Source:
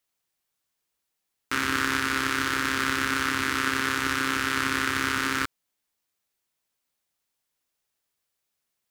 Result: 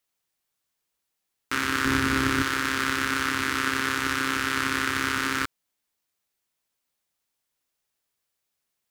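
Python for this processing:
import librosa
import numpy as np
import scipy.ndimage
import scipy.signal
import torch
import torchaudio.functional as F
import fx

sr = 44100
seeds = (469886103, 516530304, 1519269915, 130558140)

y = fx.low_shelf(x, sr, hz=360.0, db=11.5, at=(1.85, 2.43))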